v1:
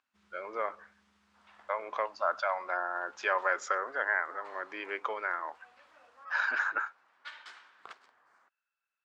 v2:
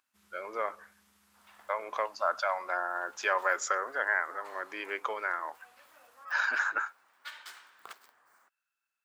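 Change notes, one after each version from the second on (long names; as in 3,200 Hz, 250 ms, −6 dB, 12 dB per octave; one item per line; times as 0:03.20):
master: remove high-frequency loss of the air 120 metres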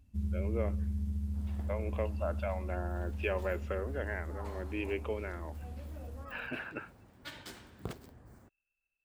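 speech: add transistor ladder low-pass 2,800 Hz, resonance 85%
master: remove high-pass with resonance 1,200 Hz, resonance Q 1.8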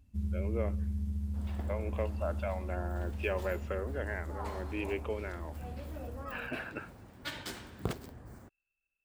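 second sound +6.0 dB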